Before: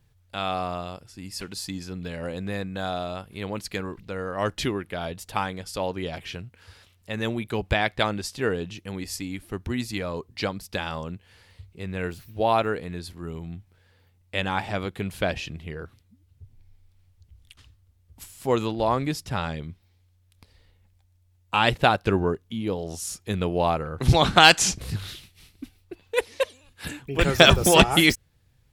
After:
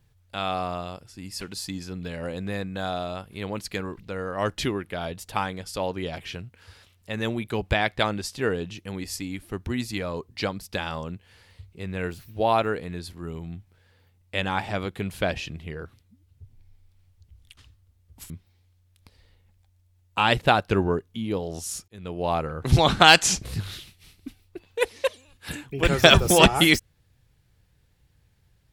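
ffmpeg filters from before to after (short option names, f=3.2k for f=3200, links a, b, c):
-filter_complex "[0:a]asplit=3[a][b][c];[a]atrim=end=18.302[d];[b]atrim=start=19.658:end=23.24,asetpts=PTS-STARTPTS,afade=t=out:st=3.578:d=0.004:c=hsin[e];[c]atrim=start=23.24,asetpts=PTS-STARTPTS,afade=t=in:d=0.56[f];[e][f]concat=n=2:v=0:a=1[g];[d][g]acrossfade=d=0.004:c1=hsin:c2=hsin"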